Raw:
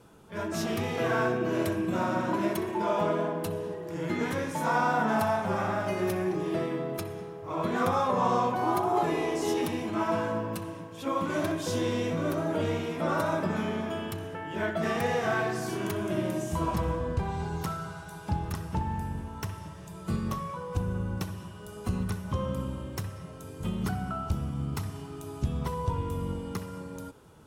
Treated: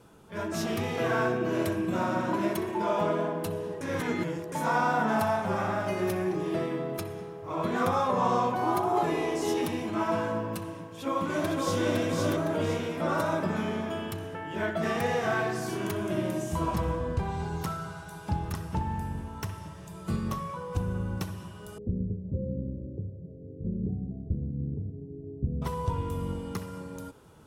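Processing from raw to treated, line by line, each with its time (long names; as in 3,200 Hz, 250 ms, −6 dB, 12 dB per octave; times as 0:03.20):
0:03.81–0:04.52: reverse
0:10.85–0:11.85: delay throw 510 ms, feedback 40%, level −2 dB
0:21.78–0:25.62: elliptic low-pass filter 500 Hz, stop band 60 dB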